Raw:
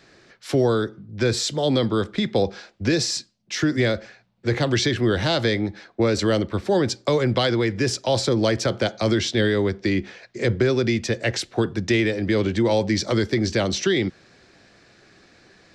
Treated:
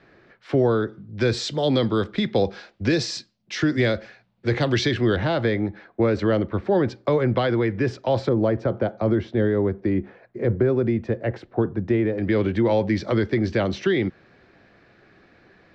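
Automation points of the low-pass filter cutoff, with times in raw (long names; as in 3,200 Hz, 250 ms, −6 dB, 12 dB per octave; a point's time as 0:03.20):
2,200 Hz
from 0:00.89 4,400 Hz
from 0:05.16 2,000 Hz
from 0:08.29 1,100 Hz
from 0:12.18 2,400 Hz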